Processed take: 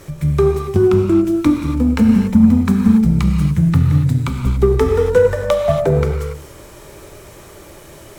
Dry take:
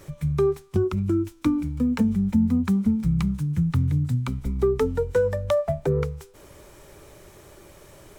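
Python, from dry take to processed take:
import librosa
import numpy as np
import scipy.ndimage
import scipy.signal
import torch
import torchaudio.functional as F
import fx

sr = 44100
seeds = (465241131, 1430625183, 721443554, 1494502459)

y = fx.rev_gated(x, sr, seeds[0], gate_ms=310, shape='flat', drr_db=1.5)
y = fx.cheby_harmonics(y, sr, harmonics=(8,), levels_db=(-33,), full_scale_db=-8.5)
y = y * 10.0 ** (7.5 / 20.0)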